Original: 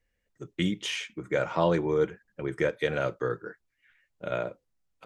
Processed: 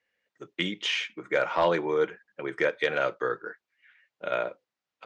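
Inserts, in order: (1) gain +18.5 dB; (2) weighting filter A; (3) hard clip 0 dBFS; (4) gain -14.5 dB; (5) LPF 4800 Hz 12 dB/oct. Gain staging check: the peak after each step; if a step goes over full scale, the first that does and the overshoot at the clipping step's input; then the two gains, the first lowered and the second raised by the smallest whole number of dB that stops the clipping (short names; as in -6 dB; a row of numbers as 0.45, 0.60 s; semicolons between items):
+7.5, +5.5, 0.0, -14.5, -14.0 dBFS; step 1, 5.5 dB; step 1 +12.5 dB, step 4 -8.5 dB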